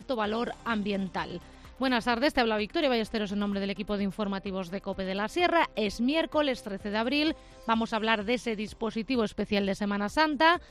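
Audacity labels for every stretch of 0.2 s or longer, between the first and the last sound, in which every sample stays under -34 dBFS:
1.370000	1.810000	silence
7.320000	7.680000	silence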